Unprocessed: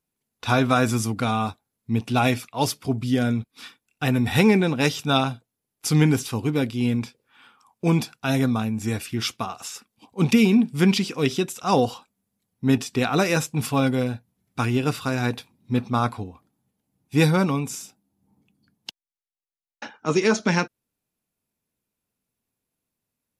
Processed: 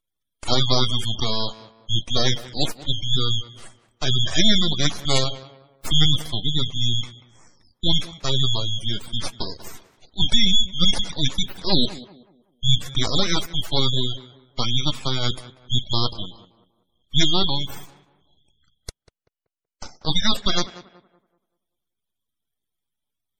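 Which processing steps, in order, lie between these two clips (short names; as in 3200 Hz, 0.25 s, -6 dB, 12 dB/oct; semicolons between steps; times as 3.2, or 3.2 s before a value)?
four-band scrambler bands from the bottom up 4123; full-wave rectifier; on a send: tape echo 0.19 s, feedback 39%, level -14.5 dB, low-pass 1700 Hz; on the sum: spectral gate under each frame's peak -30 dB strong; gain +3.5 dB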